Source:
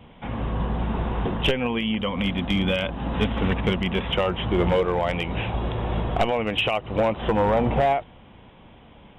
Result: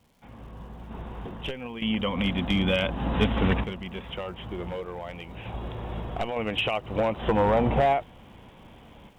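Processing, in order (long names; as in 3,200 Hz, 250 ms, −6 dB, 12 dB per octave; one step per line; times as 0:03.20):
sample-and-hold tremolo 1.1 Hz, depth 85%
surface crackle 590 per second −56 dBFS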